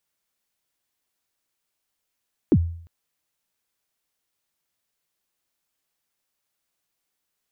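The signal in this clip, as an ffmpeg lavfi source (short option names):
-f lavfi -i "aevalsrc='0.316*pow(10,-3*t/0.58)*sin(2*PI*(390*0.055/log(84/390)*(exp(log(84/390)*min(t,0.055)/0.055)-1)+84*max(t-0.055,0)))':d=0.35:s=44100"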